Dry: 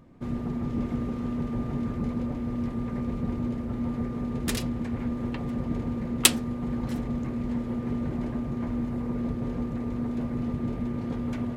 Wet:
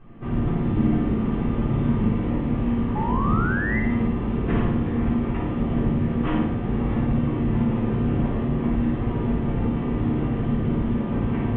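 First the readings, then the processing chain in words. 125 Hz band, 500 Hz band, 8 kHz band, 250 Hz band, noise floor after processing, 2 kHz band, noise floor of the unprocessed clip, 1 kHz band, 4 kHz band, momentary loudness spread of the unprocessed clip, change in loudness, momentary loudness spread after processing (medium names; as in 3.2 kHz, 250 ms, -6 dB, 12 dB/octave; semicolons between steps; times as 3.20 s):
+9.0 dB, +7.5 dB, under -40 dB, +6.0 dB, -27 dBFS, +7.0 dB, -34 dBFS, +10.0 dB, under -10 dB, 2 LU, +6.0 dB, 3 LU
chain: CVSD coder 16 kbps; treble shelf 2.2 kHz -8 dB; simulated room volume 160 m³, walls furnished, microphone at 3.7 m; painted sound rise, 2.95–3.80 s, 830–2100 Hz -28 dBFS; flutter echo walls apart 9.5 m, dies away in 0.77 s; trim -2 dB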